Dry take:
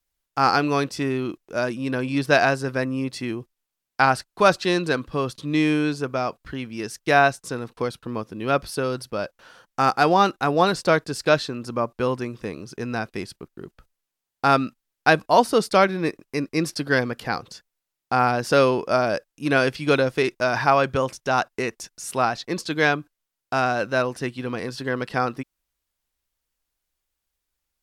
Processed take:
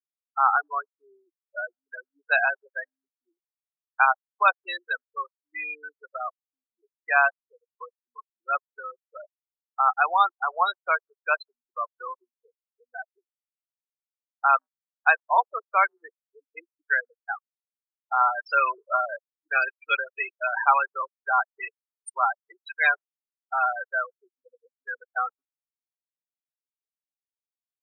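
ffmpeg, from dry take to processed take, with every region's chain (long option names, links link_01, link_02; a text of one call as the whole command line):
ffmpeg -i in.wav -filter_complex "[0:a]asettb=1/sr,asplit=3[link_01][link_02][link_03];[link_01]atrim=end=18.204[link_04];[link_02]atrim=start=18.2:end=23.74,asetpts=PTS-STARTPTS,afade=type=in:duration=0.004:curve=qsin,afade=type=out:start_time=5.536:duration=0.004:curve=qsin,highshelf=frequency=8100:gain=11,aecho=1:1:5.1:0.47,atrim=end_sample=244314[link_05];[link_03]atrim=start=23.736[link_06];[link_04][link_05]acrossfade=duration=0.004:curve1=hsin:curve2=qsin[link_07];[link_07][link_06]acrossfade=duration=0.004:curve1=qsin:curve2=hsin,afftfilt=real='re*gte(hypot(re,im),0.224)':imag='im*gte(hypot(re,im),0.224)':win_size=1024:overlap=0.75,highpass=frequency=900:width=0.5412,highpass=frequency=900:width=1.3066,afftdn=noise_reduction=26:noise_floor=-42,volume=1.5dB" out.wav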